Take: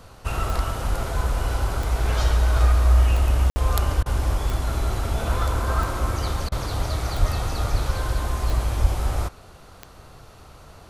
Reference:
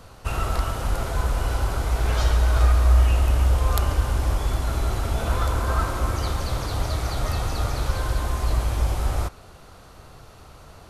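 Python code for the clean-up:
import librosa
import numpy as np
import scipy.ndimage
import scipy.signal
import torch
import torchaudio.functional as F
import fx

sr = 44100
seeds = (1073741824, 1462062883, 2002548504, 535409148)

y = fx.fix_declick_ar(x, sr, threshold=10.0)
y = fx.highpass(y, sr, hz=140.0, slope=24, at=(7.19, 7.31), fade=0.02)
y = fx.highpass(y, sr, hz=140.0, slope=24, at=(7.71, 7.83), fade=0.02)
y = fx.highpass(y, sr, hz=140.0, slope=24, at=(8.81, 8.93), fade=0.02)
y = fx.fix_ambience(y, sr, seeds[0], print_start_s=9.42, print_end_s=9.92, start_s=3.5, end_s=3.56)
y = fx.fix_interpolate(y, sr, at_s=(4.03, 6.49), length_ms=28.0)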